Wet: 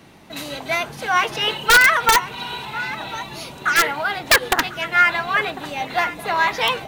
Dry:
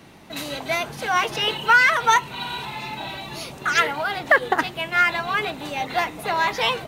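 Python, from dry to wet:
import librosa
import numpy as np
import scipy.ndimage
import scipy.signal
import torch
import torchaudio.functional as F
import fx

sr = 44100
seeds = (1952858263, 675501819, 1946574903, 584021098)

y = x + 10.0 ** (-15.0 / 20.0) * np.pad(x, (int(1049 * sr / 1000.0), 0))[:len(x)]
y = (np.mod(10.0 ** (7.5 / 20.0) * y + 1.0, 2.0) - 1.0) / 10.0 ** (7.5 / 20.0)
y = fx.dynamic_eq(y, sr, hz=1600.0, q=0.79, threshold_db=-27.0, ratio=4.0, max_db=4)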